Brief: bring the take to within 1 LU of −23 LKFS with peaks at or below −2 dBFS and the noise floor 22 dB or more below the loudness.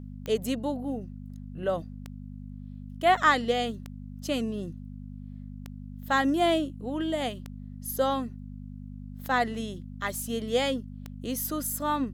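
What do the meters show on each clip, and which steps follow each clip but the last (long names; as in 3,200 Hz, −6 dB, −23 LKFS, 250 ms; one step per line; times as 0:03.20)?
number of clicks 7; mains hum 50 Hz; hum harmonics up to 250 Hz; level of the hum −38 dBFS; integrated loudness −29.0 LKFS; sample peak −9.0 dBFS; target loudness −23.0 LKFS
→ click removal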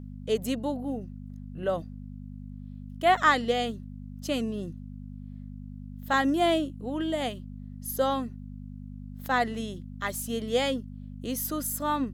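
number of clicks 0; mains hum 50 Hz; hum harmonics up to 250 Hz; level of the hum −38 dBFS
→ hum removal 50 Hz, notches 5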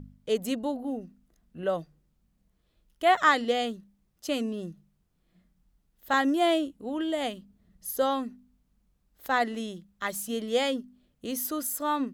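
mains hum none found; integrated loudness −29.0 LKFS; sample peak −8.5 dBFS; target loudness −23.0 LKFS
→ level +6 dB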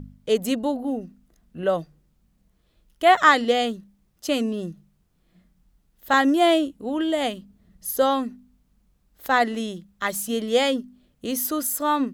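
integrated loudness −23.0 LKFS; sample peak −2.5 dBFS; background noise floor −66 dBFS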